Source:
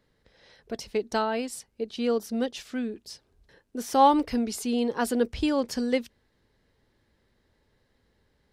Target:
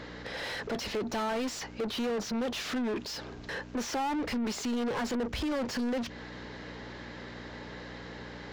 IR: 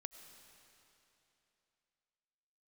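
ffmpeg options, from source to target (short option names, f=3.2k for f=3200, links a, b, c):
-filter_complex "[0:a]acrossover=split=180[a][b];[b]acompressor=threshold=-33dB:ratio=6[c];[a][c]amix=inputs=2:normalize=0,aeval=exprs='val(0)+0.000891*(sin(2*PI*60*n/s)+sin(2*PI*2*60*n/s)/2+sin(2*PI*3*60*n/s)/3+sin(2*PI*4*60*n/s)/4+sin(2*PI*5*60*n/s)/5)':c=same,aresample=16000,asoftclip=type=tanh:threshold=-33.5dB,aresample=44100,asplit=2[d][e];[e]highpass=f=720:p=1,volume=33dB,asoftclip=type=tanh:threshold=-31dB[f];[d][f]amix=inputs=2:normalize=0,lowpass=f=2.3k:p=1,volume=-6dB,volume=5dB"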